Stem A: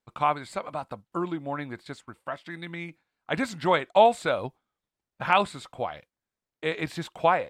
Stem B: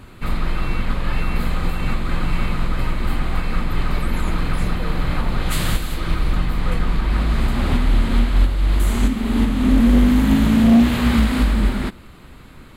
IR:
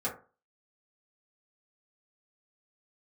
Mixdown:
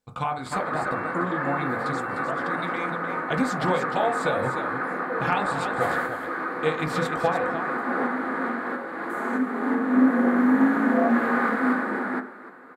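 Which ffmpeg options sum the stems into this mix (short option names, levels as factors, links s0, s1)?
-filter_complex "[0:a]bass=f=250:g=3,treble=f=4000:g=12,acompressor=threshold=0.0501:ratio=6,volume=1,asplit=3[s0][s1][s2];[s1]volume=0.596[s3];[s2]volume=0.596[s4];[1:a]highpass=f=290:w=0.5412,highpass=f=290:w=1.3066,highshelf=f=2200:t=q:w=3:g=-10,adelay=300,volume=0.75,asplit=3[s5][s6][s7];[s6]volume=0.398[s8];[s7]volume=0.224[s9];[2:a]atrim=start_sample=2205[s10];[s3][s8]amix=inputs=2:normalize=0[s11];[s11][s10]afir=irnorm=-1:irlink=0[s12];[s4][s9]amix=inputs=2:normalize=0,aecho=0:1:303:1[s13];[s0][s5][s12][s13]amix=inputs=4:normalize=0,highshelf=f=3400:g=-10.5"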